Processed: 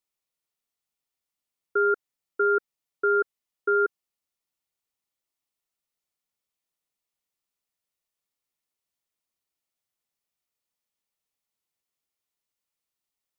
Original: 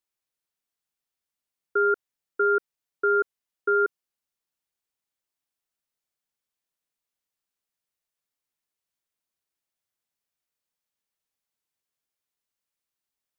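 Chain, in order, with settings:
notch filter 1,600 Hz, Q 8.8

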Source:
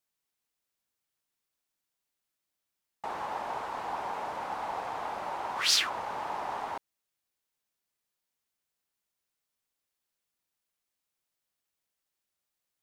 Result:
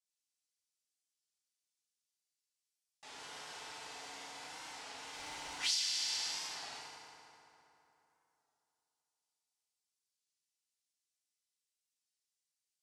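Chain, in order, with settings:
leveller curve on the samples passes 1
meter weighting curve ITU-R 468
0:05.13–0:05.55: leveller curve on the samples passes 1
guitar amp tone stack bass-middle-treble 10-0-1
feedback delay network reverb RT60 3.2 s, high-frequency decay 0.6×, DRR −6 dB
downward compressor 6 to 1, threshold −37 dBFS, peak gain reduction 12 dB
hum removal 111.1 Hz, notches 28
wow of a warped record 33 1/3 rpm, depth 100 cents
level +5 dB

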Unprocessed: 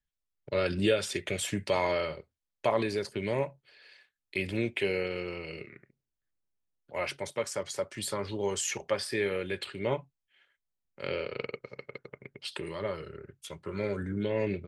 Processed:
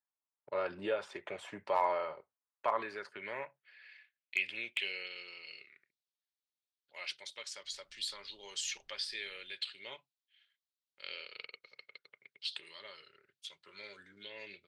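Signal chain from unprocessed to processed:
band-pass filter sweep 950 Hz → 3,900 Hz, 0:02.22–0:05.26
hard clipping −22.5 dBFS, distortion −28 dB
0:07.63–0:09.51: background noise brown −76 dBFS
level +3 dB

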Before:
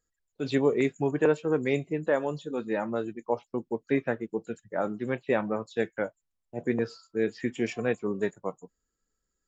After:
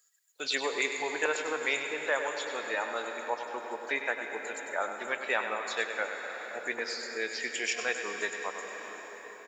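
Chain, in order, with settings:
high-pass filter 900 Hz 12 dB per octave
high-shelf EQ 3,100 Hz +11 dB
single-tap delay 99 ms −9.5 dB
convolution reverb RT60 5.0 s, pre-delay 117 ms, DRR 6.5 dB
in parallel at +2 dB: downward compressor, threshold −44 dBFS, peak gain reduction 17.5 dB

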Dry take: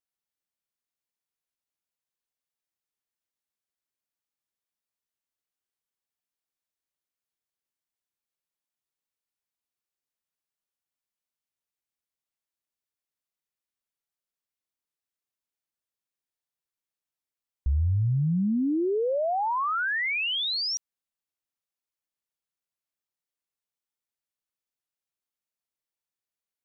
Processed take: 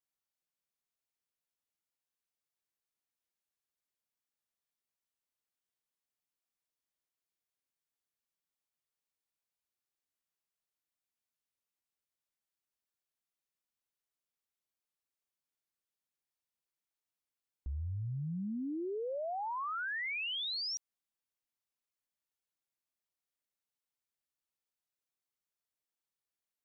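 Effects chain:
dynamic equaliser 560 Hz, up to +3 dB, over −42 dBFS, Q 4.7
brickwall limiter −31.5 dBFS, peak gain reduction 11.5 dB
level −3 dB

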